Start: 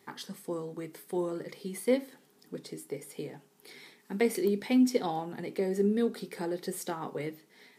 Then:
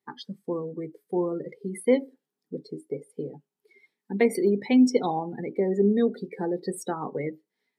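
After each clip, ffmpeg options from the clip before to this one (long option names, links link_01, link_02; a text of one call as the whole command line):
ffmpeg -i in.wav -af "afftdn=noise_reduction=29:noise_floor=-39,volume=5.5dB" out.wav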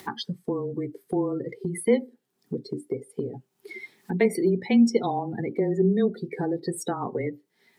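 ffmpeg -i in.wav -af "afreqshift=-20,acompressor=mode=upward:threshold=-23dB:ratio=2.5" out.wav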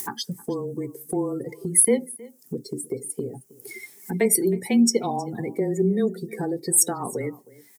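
ffmpeg -i in.wav -filter_complex "[0:a]acrossover=split=470[link_01][link_02];[link_02]aexciter=amount=9.1:drive=5.4:freq=5700[link_03];[link_01][link_03]amix=inputs=2:normalize=0,aecho=1:1:316:0.0841" out.wav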